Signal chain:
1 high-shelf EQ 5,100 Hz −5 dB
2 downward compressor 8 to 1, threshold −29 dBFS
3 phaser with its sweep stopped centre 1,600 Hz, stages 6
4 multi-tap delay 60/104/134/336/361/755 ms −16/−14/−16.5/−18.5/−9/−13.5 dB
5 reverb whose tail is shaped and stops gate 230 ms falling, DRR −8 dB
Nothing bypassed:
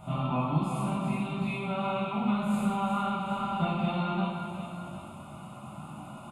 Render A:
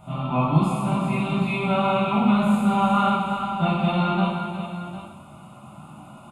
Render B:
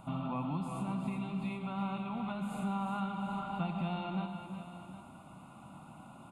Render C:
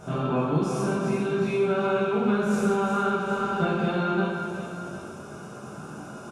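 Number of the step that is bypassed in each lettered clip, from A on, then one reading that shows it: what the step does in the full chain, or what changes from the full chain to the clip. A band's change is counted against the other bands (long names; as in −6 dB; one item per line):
2, average gain reduction 5.0 dB
5, echo-to-direct ratio 9.0 dB to −5.5 dB
3, 500 Hz band +8.5 dB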